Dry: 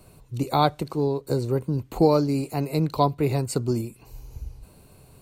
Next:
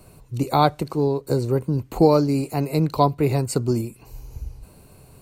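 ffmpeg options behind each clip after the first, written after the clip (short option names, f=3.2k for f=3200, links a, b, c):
-af "equalizer=f=3.5k:w=3.4:g=-3.5,volume=3dB"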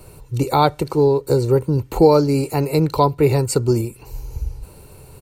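-filter_complex "[0:a]asplit=2[a][b];[b]alimiter=limit=-12.5dB:level=0:latency=1:release=280,volume=0.5dB[c];[a][c]amix=inputs=2:normalize=0,aecho=1:1:2.2:0.42,volume=-1dB"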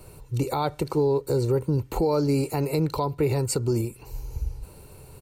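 -af "alimiter=limit=-11dB:level=0:latency=1:release=72,volume=-4dB"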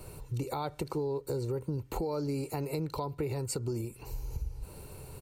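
-af "acompressor=threshold=-34dB:ratio=3"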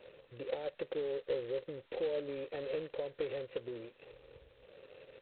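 -filter_complex "[0:a]aeval=exprs='sgn(val(0))*max(abs(val(0))-0.00158,0)':c=same,asplit=3[a][b][c];[a]bandpass=f=530:t=q:w=8,volume=0dB[d];[b]bandpass=f=1.84k:t=q:w=8,volume=-6dB[e];[c]bandpass=f=2.48k:t=q:w=8,volume=-9dB[f];[d][e][f]amix=inputs=3:normalize=0,volume=7.5dB" -ar 8000 -c:a adpcm_g726 -b:a 16k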